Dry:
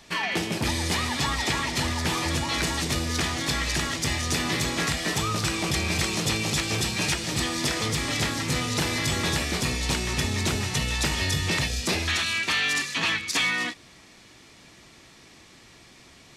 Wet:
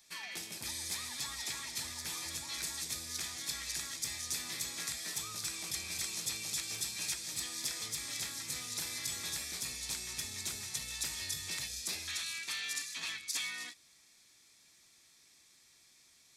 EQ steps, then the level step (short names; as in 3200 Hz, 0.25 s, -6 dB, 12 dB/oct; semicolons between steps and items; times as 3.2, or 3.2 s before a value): pre-emphasis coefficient 0.9; notch 2900 Hz, Q 9.1; -5.5 dB